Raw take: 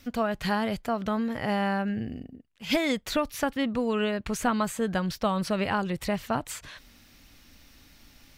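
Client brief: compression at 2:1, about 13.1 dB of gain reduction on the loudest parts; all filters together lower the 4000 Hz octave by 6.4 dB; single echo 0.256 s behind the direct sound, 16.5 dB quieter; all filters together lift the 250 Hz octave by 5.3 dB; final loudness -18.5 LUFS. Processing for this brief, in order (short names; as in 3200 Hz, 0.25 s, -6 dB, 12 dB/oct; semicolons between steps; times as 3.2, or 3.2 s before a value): bell 250 Hz +6.5 dB; bell 4000 Hz -9 dB; compressor 2:1, threshold -43 dBFS; echo 0.256 s -16.5 dB; gain +19 dB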